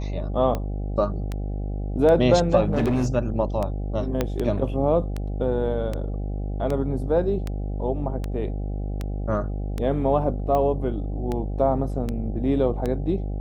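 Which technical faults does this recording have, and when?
mains buzz 50 Hz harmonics 16 −28 dBFS
scratch tick 78 rpm −15 dBFS
0:02.66–0:03.16: clipping −17.5 dBFS
0:04.21: click −9 dBFS

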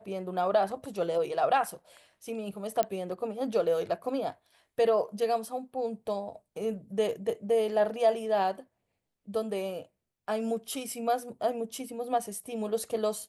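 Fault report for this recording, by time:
0:02.83: click −13 dBFS

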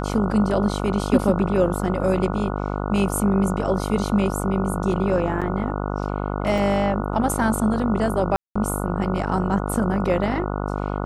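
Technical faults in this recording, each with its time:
mains buzz 50 Hz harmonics 29 −26 dBFS
0:05.41–0:05.42: drop-out 6.9 ms
0:06.58: drop-out 2.2 ms
0:08.36–0:08.55: drop-out 195 ms

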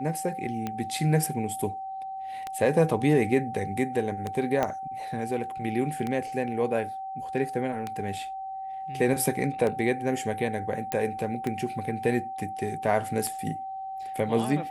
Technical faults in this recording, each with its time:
scratch tick 33 1/3 rpm −17 dBFS
whistle 770 Hz −33 dBFS
0:04.63: click −13 dBFS
0:10.92: click −13 dBFS

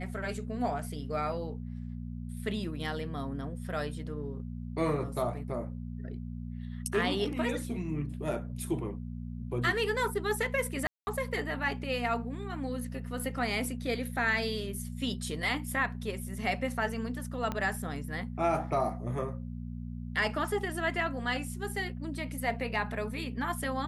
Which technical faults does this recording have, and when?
mains hum 60 Hz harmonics 4 −39 dBFS
0:10.87–0:11.07: drop-out 200 ms
0:17.52: click −20 dBFS

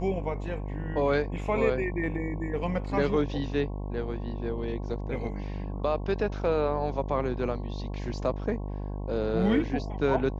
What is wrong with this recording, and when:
mains buzz 50 Hz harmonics 22 −34 dBFS

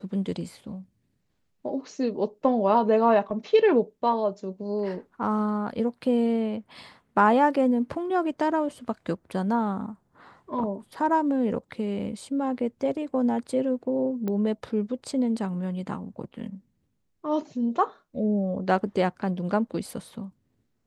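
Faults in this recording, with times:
0:14.28: click −19 dBFS

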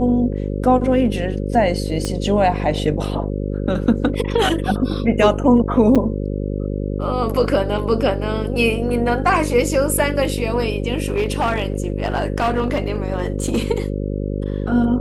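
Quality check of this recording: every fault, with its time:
mains buzz 50 Hz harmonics 11 −23 dBFS
0:02.05: click −10 dBFS
0:05.95–0:05.96: drop-out 6.5 ms
0:11.08–0:13.58: clipping −13.5 dBFS

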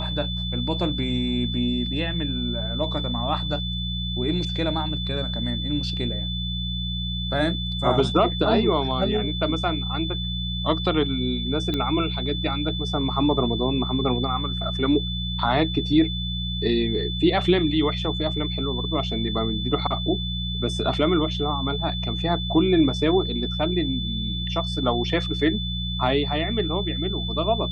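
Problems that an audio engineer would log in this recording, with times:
mains hum 60 Hz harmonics 3 −29 dBFS
whistle 3,500 Hz −30 dBFS
0:11.74: click −14 dBFS

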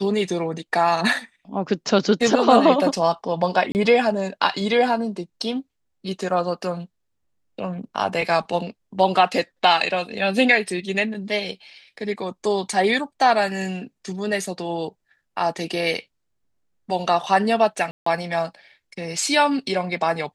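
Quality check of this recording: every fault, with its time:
0:03.72–0:03.75: drop-out 29 ms
0:17.91–0:18.06: drop-out 154 ms

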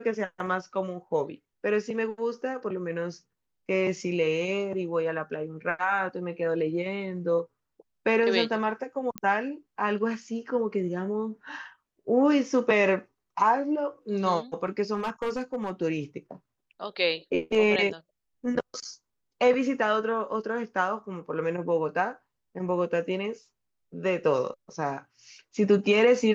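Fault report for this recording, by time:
0:09.18: click −16 dBFS
0:14.95–0:15.71: clipping −25 dBFS

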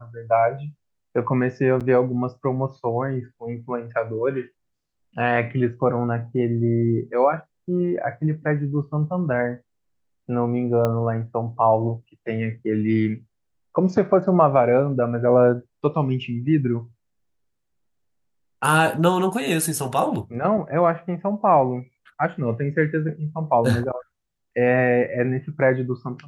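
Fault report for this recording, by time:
0:01.80–0:01.81: drop-out 7.2 ms
0:10.85: click −11 dBFS

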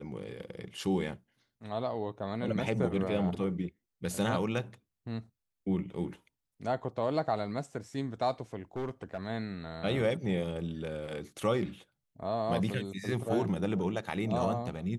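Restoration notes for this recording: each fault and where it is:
0:08.76–0:09.26: clipping −30.5 dBFS

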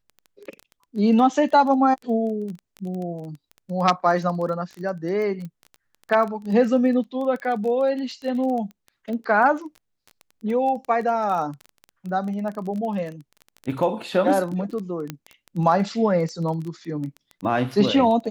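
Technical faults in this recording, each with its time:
surface crackle 16 per second −29 dBFS
0:05.45: click −25 dBFS
0:15.10: click −14 dBFS

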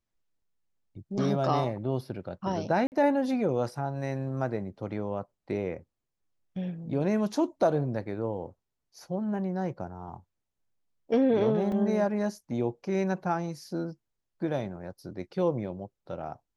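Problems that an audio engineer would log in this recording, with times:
0:02.87–0:02.92: drop-out 49 ms
0:11.72: drop-out 2.5 ms

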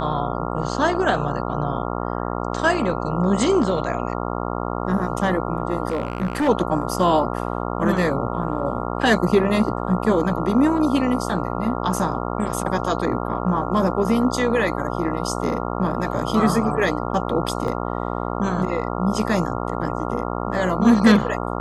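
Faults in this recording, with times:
mains buzz 60 Hz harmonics 23 −26 dBFS
0:05.90–0:06.49: clipping −18 dBFS
0:17.68: drop-out 2.8 ms

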